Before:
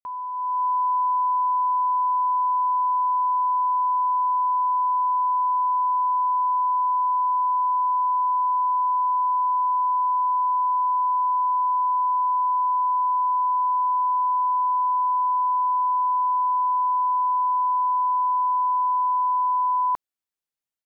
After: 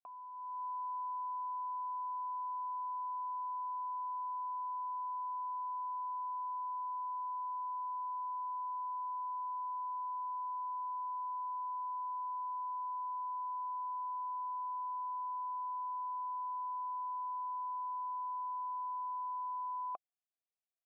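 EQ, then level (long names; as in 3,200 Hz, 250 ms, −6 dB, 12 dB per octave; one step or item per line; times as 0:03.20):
formant filter a
high-frequency loss of the air 390 metres
parametric band 980 Hz −8 dB
+5.0 dB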